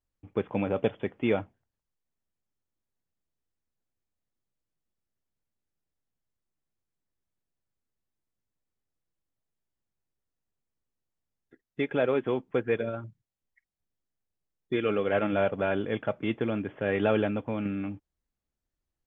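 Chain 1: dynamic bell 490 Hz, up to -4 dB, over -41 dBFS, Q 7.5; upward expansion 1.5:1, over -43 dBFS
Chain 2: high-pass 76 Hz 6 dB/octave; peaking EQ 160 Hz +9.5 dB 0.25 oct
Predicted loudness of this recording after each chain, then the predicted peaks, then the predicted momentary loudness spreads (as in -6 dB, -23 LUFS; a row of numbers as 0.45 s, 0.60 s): -32.0 LUFS, -29.5 LUFS; -13.5 dBFS, -13.0 dBFS; 9 LU, 9 LU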